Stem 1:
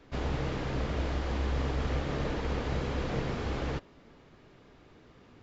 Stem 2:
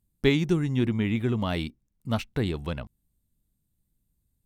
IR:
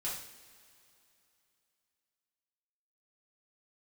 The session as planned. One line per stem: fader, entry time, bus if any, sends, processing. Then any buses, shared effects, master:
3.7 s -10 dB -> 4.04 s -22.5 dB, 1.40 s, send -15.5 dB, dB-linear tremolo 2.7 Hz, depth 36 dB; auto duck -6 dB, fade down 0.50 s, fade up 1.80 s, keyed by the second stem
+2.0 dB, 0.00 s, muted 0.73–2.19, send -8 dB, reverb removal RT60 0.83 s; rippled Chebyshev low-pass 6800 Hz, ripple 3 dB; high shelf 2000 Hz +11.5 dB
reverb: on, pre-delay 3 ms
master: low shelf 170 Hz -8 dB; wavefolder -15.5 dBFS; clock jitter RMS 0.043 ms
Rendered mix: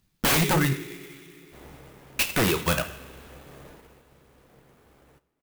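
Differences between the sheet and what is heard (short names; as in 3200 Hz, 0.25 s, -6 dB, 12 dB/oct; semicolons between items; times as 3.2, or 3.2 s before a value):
stem 1: missing dB-linear tremolo 2.7 Hz, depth 36 dB; stem 2 +2.0 dB -> +11.5 dB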